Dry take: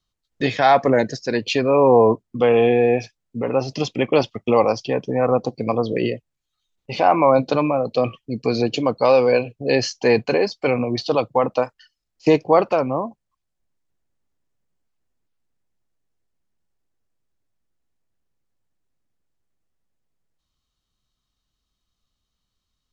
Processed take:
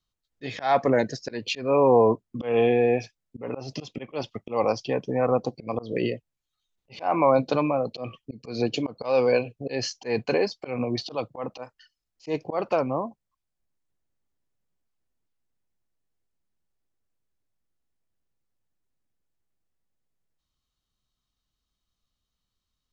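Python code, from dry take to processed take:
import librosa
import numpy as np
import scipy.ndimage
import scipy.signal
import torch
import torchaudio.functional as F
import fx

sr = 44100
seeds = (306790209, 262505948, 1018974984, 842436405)

y = fx.auto_swell(x, sr, attack_ms=172.0)
y = F.gain(torch.from_numpy(y), -4.5).numpy()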